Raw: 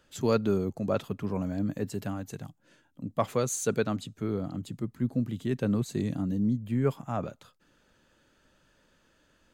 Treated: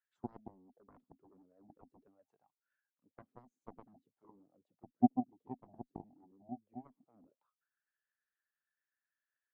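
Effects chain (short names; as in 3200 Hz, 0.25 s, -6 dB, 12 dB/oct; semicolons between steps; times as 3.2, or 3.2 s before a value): harmonic-percussive split percussive +6 dB; auto-wah 250–1800 Hz, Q 6.3, down, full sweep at -23.5 dBFS; added harmonics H 3 -9 dB, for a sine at -16.5 dBFS; gain +1.5 dB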